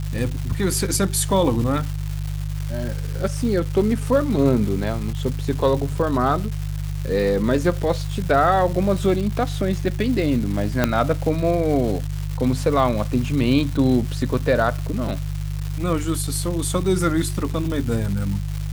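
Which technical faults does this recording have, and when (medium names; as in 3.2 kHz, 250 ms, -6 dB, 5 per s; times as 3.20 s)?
crackle 500 per s -28 dBFS
hum 50 Hz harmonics 3 -26 dBFS
10.84 s: pop -3 dBFS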